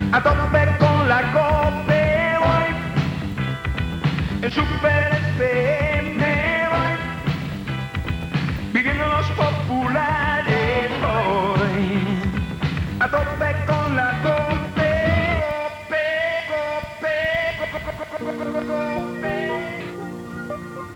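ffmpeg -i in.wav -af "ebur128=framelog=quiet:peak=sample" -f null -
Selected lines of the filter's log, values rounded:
Integrated loudness:
  I:         -20.9 LUFS
  Threshold: -31.0 LUFS
Loudness range:
  LRA:         4.6 LU
  Threshold: -41.1 LUFS
  LRA low:   -24.1 LUFS
  LRA high:  -19.5 LUFS
Sample peak:
  Peak:       -2.5 dBFS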